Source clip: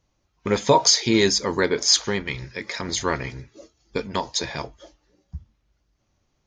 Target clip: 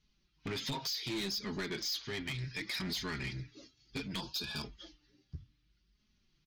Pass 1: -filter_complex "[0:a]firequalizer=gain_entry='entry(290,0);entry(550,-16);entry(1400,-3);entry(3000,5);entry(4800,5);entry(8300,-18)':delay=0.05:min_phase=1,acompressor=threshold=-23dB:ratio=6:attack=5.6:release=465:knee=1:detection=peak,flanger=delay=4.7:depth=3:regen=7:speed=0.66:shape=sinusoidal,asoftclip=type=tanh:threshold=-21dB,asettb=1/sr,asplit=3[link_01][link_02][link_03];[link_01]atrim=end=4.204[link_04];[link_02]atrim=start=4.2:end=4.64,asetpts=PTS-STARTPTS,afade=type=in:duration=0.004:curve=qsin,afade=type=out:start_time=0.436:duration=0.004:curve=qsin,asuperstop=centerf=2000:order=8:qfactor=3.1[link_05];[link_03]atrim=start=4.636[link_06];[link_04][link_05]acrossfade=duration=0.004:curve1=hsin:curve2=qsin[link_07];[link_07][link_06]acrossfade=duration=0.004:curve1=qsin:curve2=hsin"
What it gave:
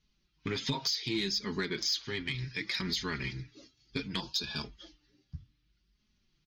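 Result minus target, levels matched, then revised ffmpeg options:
soft clipping: distortion −13 dB
-filter_complex "[0:a]firequalizer=gain_entry='entry(290,0);entry(550,-16);entry(1400,-3);entry(3000,5);entry(4800,5);entry(8300,-18)':delay=0.05:min_phase=1,acompressor=threshold=-23dB:ratio=6:attack=5.6:release=465:knee=1:detection=peak,flanger=delay=4.7:depth=3:regen=7:speed=0.66:shape=sinusoidal,asoftclip=type=tanh:threshold=-33dB,asettb=1/sr,asplit=3[link_01][link_02][link_03];[link_01]atrim=end=4.204[link_04];[link_02]atrim=start=4.2:end=4.64,asetpts=PTS-STARTPTS,afade=type=in:duration=0.004:curve=qsin,afade=type=out:start_time=0.436:duration=0.004:curve=qsin,asuperstop=centerf=2000:order=8:qfactor=3.1[link_05];[link_03]atrim=start=4.636[link_06];[link_04][link_05]acrossfade=duration=0.004:curve1=hsin:curve2=qsin[link_07];[link_07][link_06]acrossfade=duration=0.004:curve1=qsin:curve2=hsin"

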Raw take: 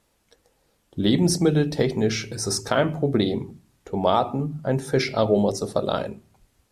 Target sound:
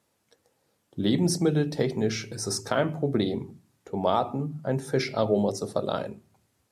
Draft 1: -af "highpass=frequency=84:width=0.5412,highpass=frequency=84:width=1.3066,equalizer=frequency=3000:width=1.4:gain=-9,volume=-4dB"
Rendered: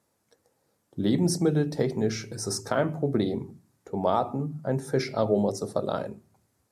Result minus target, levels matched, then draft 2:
4,000 Hz band −3.0 dB
-af "highpass=frequency=84:width=0.5412,highpass=frequency=84:width=1.3066,equalizer=frequency=3000:width=1.4:gain=-2,volume=-4dB"

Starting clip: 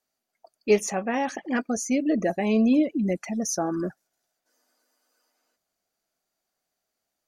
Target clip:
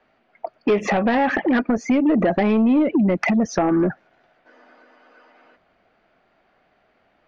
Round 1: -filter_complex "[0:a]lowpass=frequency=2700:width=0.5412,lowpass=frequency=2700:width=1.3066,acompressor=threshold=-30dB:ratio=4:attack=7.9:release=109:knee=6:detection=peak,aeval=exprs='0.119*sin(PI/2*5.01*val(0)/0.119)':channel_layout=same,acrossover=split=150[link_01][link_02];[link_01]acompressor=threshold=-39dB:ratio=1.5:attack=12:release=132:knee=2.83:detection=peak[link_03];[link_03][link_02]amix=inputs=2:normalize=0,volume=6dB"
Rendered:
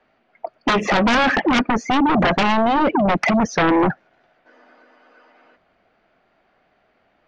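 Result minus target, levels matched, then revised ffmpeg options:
downward compressor: peak gain reduction −8 dB
-filter_complex "[0:a]lowpass=frequency=2700:width=0.5412,lowpass=frequency=2700:width=1.3066,acompressor=threshold=-41dB:ratio=4:attack=7.9:release=109:knee=6:detection=peak,aeval=exprs='0.119*sin(PI/2*5.01*val(0)/0.119)':channel_layout=same,acrossover=split=150[link_01][link_02];[link_01]acompressor=threshold=-39dB:ratio=1.5:attack=12:release=132:knee=2.83:detection=peak[link_03];[link_03][link_02]amix=inputs=2:normalize=0,volume=6dB"

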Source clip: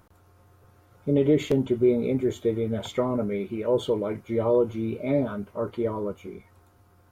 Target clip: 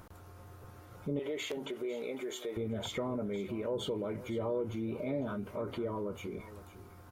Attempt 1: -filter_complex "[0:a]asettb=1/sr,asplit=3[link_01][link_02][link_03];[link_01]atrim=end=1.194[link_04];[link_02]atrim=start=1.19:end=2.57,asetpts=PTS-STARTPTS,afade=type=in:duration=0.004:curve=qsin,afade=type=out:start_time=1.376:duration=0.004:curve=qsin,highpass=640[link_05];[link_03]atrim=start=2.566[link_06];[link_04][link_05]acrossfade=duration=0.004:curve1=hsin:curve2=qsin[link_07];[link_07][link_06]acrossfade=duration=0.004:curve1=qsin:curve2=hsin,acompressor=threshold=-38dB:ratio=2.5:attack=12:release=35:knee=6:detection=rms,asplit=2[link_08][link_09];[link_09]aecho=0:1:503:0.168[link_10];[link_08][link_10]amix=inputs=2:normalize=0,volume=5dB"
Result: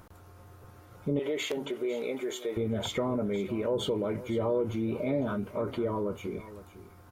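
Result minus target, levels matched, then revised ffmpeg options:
downward compressor: peak gain reduction −5.5 dB
-filter_complex "[0:a]asettb=1/sr,asplit=3[link_01][link_02][link_03];[link_01]atrim=end=1.194[link_04];[link_02]atrim=start=1.19:end=2.57,asetpts=PTS-STARTPTS,afade=type=in:duration=0.004:curve=qsin,afade=type=out:start_time=1.376:duration=0.004:curve=qsin,highpass=640[link_05];[link_03]atrim=start=2.566[link_06];[link_04][link_05]acrossfade=duration=0.004:curve1=hsin:curve2=qsin[link_07];[link_07][link_06]acrossfade=duration=0.004:curve1=qsin:curve2=hsin,acompressor=threshold=-47.5dB:ratio=2.5:attack=12:release=35:knee=6:detection=rms,asplit=2[link_08][link_09];[link_09]aecho=0:1:503:0.168[link_10];[link_08][link_10]amix=inputs=2:normalize=0,volume=5dB"

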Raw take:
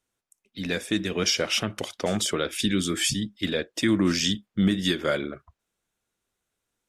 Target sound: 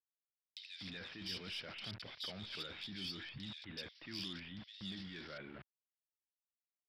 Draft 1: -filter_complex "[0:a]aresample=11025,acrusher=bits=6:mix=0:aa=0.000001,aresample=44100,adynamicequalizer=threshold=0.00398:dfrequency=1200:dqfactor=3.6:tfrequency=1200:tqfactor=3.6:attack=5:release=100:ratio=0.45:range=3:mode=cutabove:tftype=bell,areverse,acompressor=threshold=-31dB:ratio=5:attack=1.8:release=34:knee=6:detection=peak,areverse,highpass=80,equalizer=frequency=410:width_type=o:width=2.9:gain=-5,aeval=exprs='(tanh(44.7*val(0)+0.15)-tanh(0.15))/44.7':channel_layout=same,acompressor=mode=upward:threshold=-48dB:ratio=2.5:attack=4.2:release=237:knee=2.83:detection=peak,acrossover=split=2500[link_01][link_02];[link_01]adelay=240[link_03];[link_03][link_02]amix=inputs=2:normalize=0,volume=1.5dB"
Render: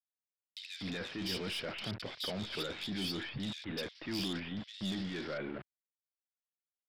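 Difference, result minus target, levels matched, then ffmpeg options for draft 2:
downward compressor: peak gain reduction −7 dB; 500 Hz band +5.5 dB
-filter_complex "[0:a]aresample=11025,acrusher=bits=6:mix=0:aa=0.000001,aresample=44100,adynamicequalizer=threshold=0.00398:dfrequency=1200:dqfactor=3.6:tfrequency=1200:tqfactor=3.6:attack=5:release=100:ratio=0.45:range=3:mode=cutabove:tftype=bell,areverse,acompressor=threshold=-39.5dB:ratio=5:attack=1.8:release=34:knee=6:detection=peak,areverse,highpass=80,equalizer=frequency=410:width_type=o:width=2.9:gain=-13.5,aeval=exprs='(tanh(44.7*val(0)+0.15)-tanh(0.15))/44.7':channel_layout=same,acompressor=mode=upward:threshold=-48dB:ratio=2.5:attack=4.2:release=237:knee=2.83:detection=peak,acrossover=split=2500[link_01][link_02];[link_01]adelay=240[link_03];[link_03][link_02]amix=inputs=2:normalize=0,volume=1.5dB"

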